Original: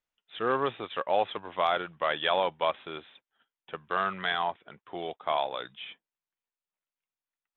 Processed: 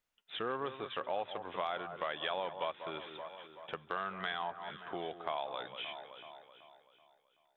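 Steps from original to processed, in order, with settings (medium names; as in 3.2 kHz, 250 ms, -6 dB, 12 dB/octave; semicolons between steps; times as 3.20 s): echo whose repeats swap between lows and highs 190 ms, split 1.5 kHz, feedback 65%, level -13 dB; compression 2.5:1, threshold -43 dBFS, peak gain reduction 15 dB; trim +3 dB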